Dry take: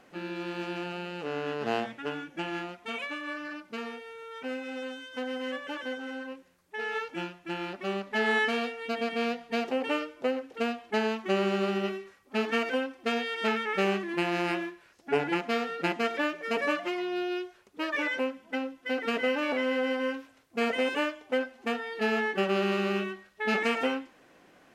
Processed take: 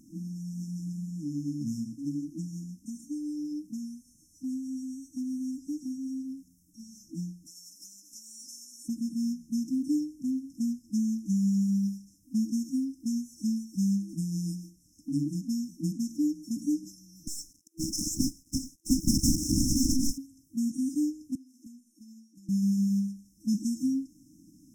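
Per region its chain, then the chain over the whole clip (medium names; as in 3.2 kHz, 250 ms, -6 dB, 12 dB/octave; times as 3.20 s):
7.45–8.87 s: spectral peaks clipped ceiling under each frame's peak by 25 dB + high-pass 760 Hz + compression, threshold -37 dBFS
17.27–20.18 s: elliptic high-pass 470 Hz, stop band 60 dB + waveshaping leveller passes 3 + loudspeaker Doppler distortion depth 0.97 ms
21.35–22.49 s: high-pass 360 Hz + compression 12:1, threshold -41 dBFS
whole clip: FFT band-reject 330–5200 Hz; dynamic bell 240 Hz, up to -4 dB, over -49 dBFS, Q 4.7; trim +8.5 dB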